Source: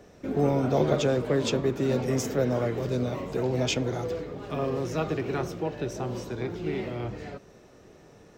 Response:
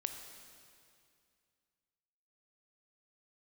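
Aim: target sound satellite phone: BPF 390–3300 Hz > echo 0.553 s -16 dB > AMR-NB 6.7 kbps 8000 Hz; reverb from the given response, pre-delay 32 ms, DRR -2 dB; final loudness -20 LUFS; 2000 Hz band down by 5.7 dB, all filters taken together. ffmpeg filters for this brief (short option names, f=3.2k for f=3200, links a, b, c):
-filter_complex "[0:a]equalizer=f=2k:t=o:g=-7,asplit=2[a][b];[1:a]atrim=start_sample=2205,adelay=32[c];[b][c]afir=irnorm=-1:irlink=0,volume=2dB[d];[a][d]amix=inputs=2:normalize=0,highpass=390,lowpass=3.3k,aecho=1:1:553:0.158,volume=9dB" -ar 8000 -c:a libopencore_amrnb -b:a 6700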